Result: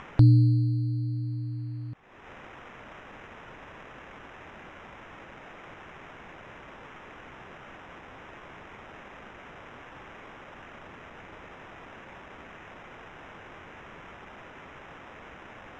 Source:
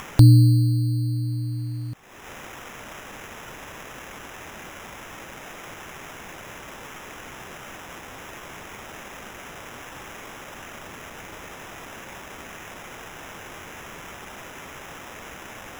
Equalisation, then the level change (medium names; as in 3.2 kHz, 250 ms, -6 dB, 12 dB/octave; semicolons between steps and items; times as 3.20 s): low-pass 2.6 kHz 12 dB/octave; -5.5 dB